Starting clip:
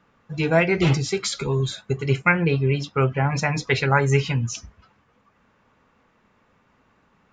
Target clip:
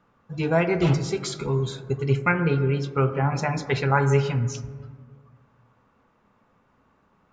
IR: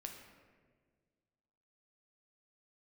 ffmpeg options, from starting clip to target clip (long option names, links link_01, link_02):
-filter_complex "[0:a]asplit=2[link_01][link_02];[link_02]highshelf=frequency=1900:width_type=q:width=1.5:gain=-11.5[link_03];[1:a]atrim=start_sample=2205[link_04];[link_03][link_04]afir=irnorm=-1:irlink=0,volume=4dB[link_05];[link_01][link_05]amix=inputs=2:normalize=0,volume=-7.5dB"